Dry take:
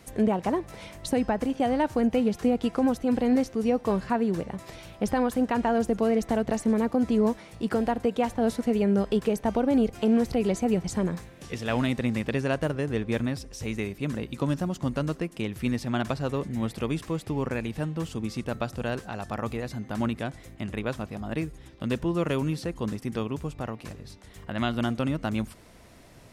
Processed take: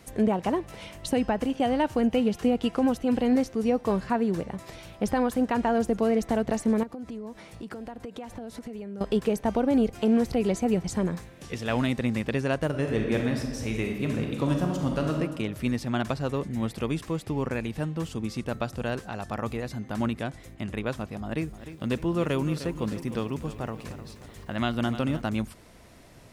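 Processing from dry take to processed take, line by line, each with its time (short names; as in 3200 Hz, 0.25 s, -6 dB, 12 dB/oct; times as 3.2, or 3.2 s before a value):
0.44–3.29 bell 2900 Hz +6 dB 0.25 oct
6.83–9.01 compressor 10:1, threshold -34 dBFS
12.68–15.16 reverb throw, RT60 1.4 s, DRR 1.5 dB
21.17–25.22 lo-fi delay 0.304 s, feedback 55%, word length 9-bit, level -12.5 dB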